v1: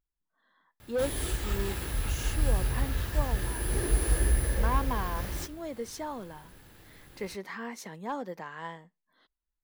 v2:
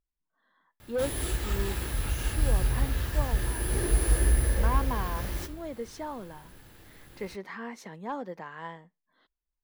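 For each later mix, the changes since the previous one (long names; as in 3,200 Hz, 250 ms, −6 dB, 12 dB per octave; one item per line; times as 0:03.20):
speech: add high-shelf EQ 5,600 Hz −10.5 dB
background: send +7.0 dB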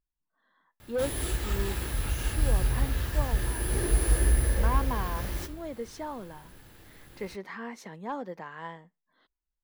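nothing changed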